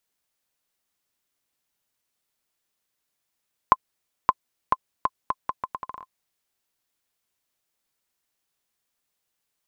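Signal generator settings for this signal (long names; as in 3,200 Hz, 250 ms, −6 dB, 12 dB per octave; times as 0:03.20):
bouncing ball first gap 0.57 s, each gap 0.76, 1,040 Hz, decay 41 ms −2 dBFS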